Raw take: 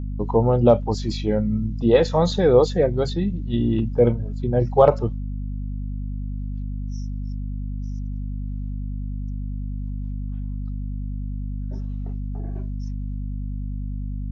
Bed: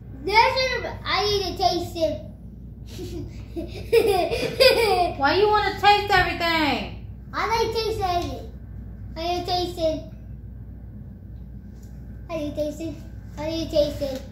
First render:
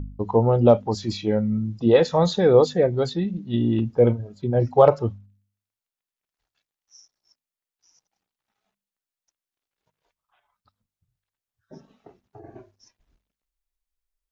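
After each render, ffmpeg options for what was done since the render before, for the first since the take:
-af "bandreject=f=50:t=h:w=4,bandreject=f=100:t=h:w=4,bandreject=f=150:t=h:w=4,bandreject=f=200:t=h:w=4,bandreject=f=250:t=h:w=4"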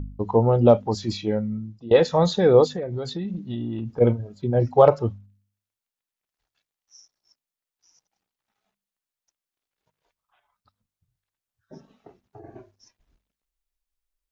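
-filter_complex "[0:a]asplit=3[s0][s1][s2];[s0]afade=t=out:st=2.67:d=0.02[s3];[s1]acompressor=threshold=0.0562:ratio=12:attack=3.2:release=140:knee=1:detection=peak,afade=t=in:st=2.67:d=0.02,afade=t=out:st=4:d=0.02[s4];[s2]afade=t=in:st=4:d=0.02[s5];[s3][s4][s5]amix=inputs=3:normalize=0,asplit=2[s6][s7];[s6]atrim=end=1.91,asetpts=PTS-STARTPTS,afade=t=out:st=1.14:d=0.77:silence=0.0891251[s8];[s7]atrim=start=1.91,asetpts=PTS-STARTPTS,afade=t=in:d=0.004:c=hsin:silence=0.0891251[s9];[s8][s9]concat=n=2:v=0:a=1"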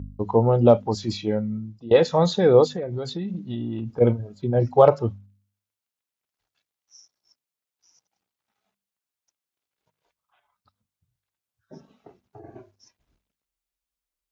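-af "highpass=55,bandreject=f=1800:w=26"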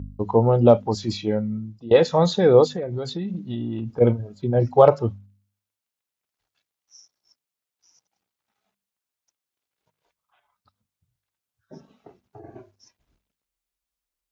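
-af "volume=1.12"

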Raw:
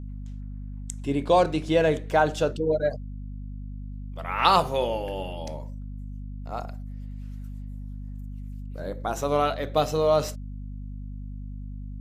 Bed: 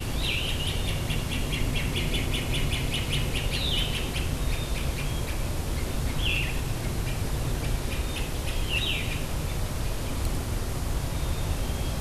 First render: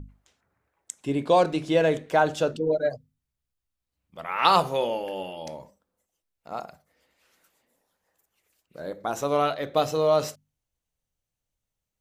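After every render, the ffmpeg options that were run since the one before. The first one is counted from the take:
-af "bandreject=f=50:t=h:w=6,bandreject=f=100:t=h:w=6,bandreject=f=150:t=h:w=6,bandreject=f=200:t=h:w=6,bandreject=f=250:t=h:w=6"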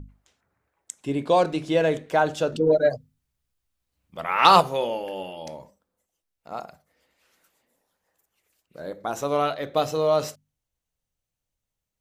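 -filter_complex "[0:a]asettb=1/sr,asplit=3[s0][s1][s2];[s0]atrim=end=2.524[s3];[s1]atrim=start=2.52:end=4.61,asetpts=PTS-STARTPTS,afade=t=in:d=0.004:c=qsin,afade=t=out:st=2.086:d=0.004:c=qsin,acontrast=34[s4];[s2]atrim=start=4.606[s5];[s3][s4]acrossfade=d=0.004:c1=hsin:c2=qsin[s6];[s6][s5]acrossfade=d=0.004:c1=qsin:c2=hsin"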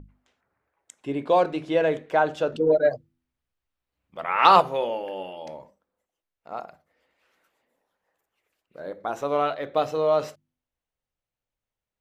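-af "bass=f=250:g=-6,treble=f=4000:g=-12,bandreject=f=83.18:t=h:w=4,bandreject=f=166.36:t=h:w=4,bandreject=f=249.54:t=h:w=4,bandreject=f=332.72:t=h:w=4"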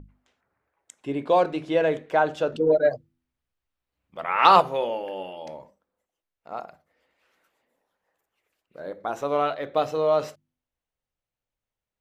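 -af anull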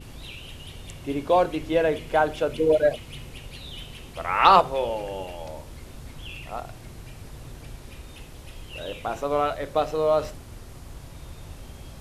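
-filter_complex "[1:a]volume=0.237[s0];[0:a][s0]amix=inputs=2:normalize=0"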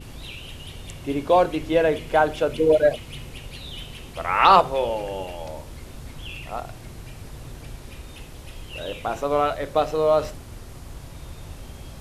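-af "volume=1.33,alimiter=limit=0.708:level=0:latency=1"

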